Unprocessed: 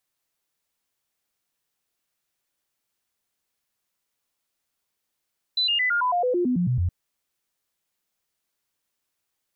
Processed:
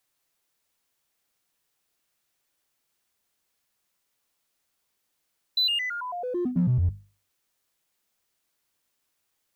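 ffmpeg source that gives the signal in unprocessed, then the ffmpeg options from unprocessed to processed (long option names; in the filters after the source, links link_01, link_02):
-f lavfi -i "aevalsrc='0.106*clip(min(mod(t,0.11),0.11-mod(t,0.11))/0.005,0,1)*sin(2*PI*4000*pow(2,-floor(t/0.11)/2)*mod(t,0.11))':duration=1.32:sample_rate=44100"
-filter_complex "[0:a]bandreject=frequency=50:width_type=h:width=6,bandreject=frequency=100:width_type=h:width=6,bandreject=frequency=150:width_type=h:width=6,bandreject=frequency=200:width_type=h:width=6,bandreject=frequency=250:width_type=h:width=6,acrossover=split=300|3000[link_01][link_02][link_03];[link_02]acompressor=threshold=-45dB:ratio=2.5[link_04];[link_01][link_04][link_03]amix=inputs=3:normalize=0,asplit=2[link_05][link_06];[link_06]asoftclip=type=hard:threshold=-33dB,volume=-7dB[link_07];[link_05][link_07]amix=inputs=2:normalize=0"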